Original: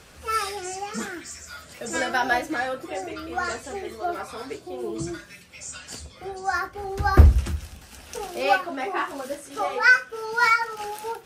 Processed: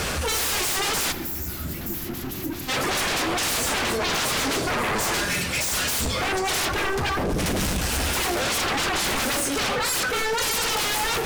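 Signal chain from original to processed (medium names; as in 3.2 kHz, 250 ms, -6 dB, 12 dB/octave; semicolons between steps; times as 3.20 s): reverse; compression 12:1, threshold -32 dBFS, peak gain reduction 26 dB; reverse; sine folder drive 19 dB, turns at -23 dBFS; power-law waveshaper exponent 0.7; time-frequency box 1.12–2.69 s, 390–11000 Hz -15 dB; on a send: filtered feedback delay 84 ms, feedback 77%, low-pass 2.5 kHz, level -12.5 dB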